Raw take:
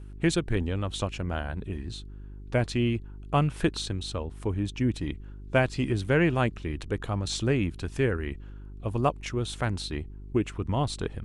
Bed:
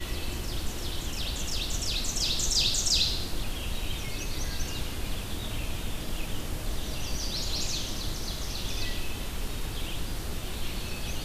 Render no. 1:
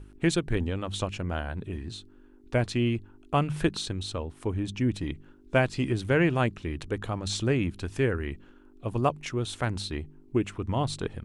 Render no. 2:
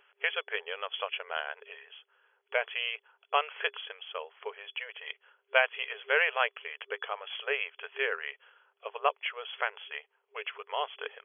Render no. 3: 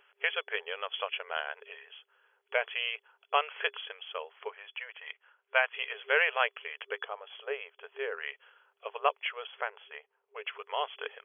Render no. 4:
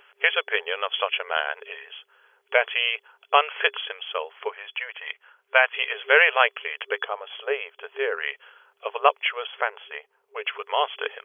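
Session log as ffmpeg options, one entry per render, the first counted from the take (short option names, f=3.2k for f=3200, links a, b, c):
-af "bandreject=f=50:t=h:w=4,bandreject=f=100:t=h:w=4,bandreject=f=150:t=h:w=4,bandreject=f=200:t=h:w=4"
-af "afftfilt=real='re*between(b*sr/4096,400,3400)':imag='im*between(b*sr/4096,400,3400)':win_size=4096:overlap=0.75,tiltshelf=f=970:g=-7.5"
-filter_complex "[0:a]asplit=3[a][b][c];[a]afade=t=out:st=4.48:d=0.02[d];[b]highpass=660,lowpass=2.6k,afade=t=in:st=4.48:d=0.02,afade=t=out:st=5.72:d=0.02[e];[c]afade=t=in:st=5.72:d=0.02[f];[d][e][f]amix=inputs=3:normalize=0,asettb=1/sr,asplit=3[g][h][i];[g]atrim=end=7.044[j];[h]atrim=start=7.04:end=8.17,asetpts=PTS-STARTPTS,afade=t=in:d=0.004:c=qsin,afade=t=out:st=1.126:d=0.004:c=qsin,equalizer=f=2.5k:t=o:w=2.2:g=-10[k];[i]atrim=start=8.166[l];[j][k]acrossfade=d=0.004:c1=hsin:c2=qsin[m];[m][l]acrossfade=d=0.004:c1=qsin:c2=hsin,asettb=1/sr,asplit=3[n][o][p];[n]atrim=end=9.474[q];[o]atrim=start=9.47:end=10.47,asetpts=PTS-STARTPTS,afade=t=in:d=0.004:c=qsin,afade=t=out:st=0.996:d=0.004:c=qsin,lowpass=f=1.2k:p=1[r];[p]atrim=start=10.466[s];[q][r]acrossfade=d=0.004:c1=hsin:c2=qsin[t];[t][s]acrossfade=d=0.004:c1=qsin:c2=hsin"
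-af "volume=9.5dB,alimiter=limit=-2dB:level=0:latency=1"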